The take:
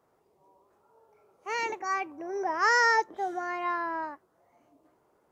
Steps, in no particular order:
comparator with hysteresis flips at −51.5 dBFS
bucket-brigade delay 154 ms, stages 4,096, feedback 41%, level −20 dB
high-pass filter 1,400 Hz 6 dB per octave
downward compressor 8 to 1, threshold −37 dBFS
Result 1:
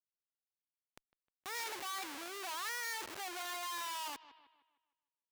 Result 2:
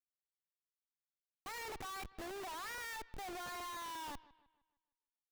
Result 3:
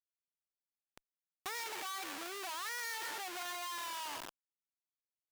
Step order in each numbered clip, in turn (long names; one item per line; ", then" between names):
comparator with hysteresis, then bucket-brigade delay, then downward compressor, then high-pass filter
high-pass filter, then downward compressor, then comparator with hysteresis, then bucket-brigade delay
bucket-brigade delay, then comparator with hysteresis, then high-pass filter, then downward compressor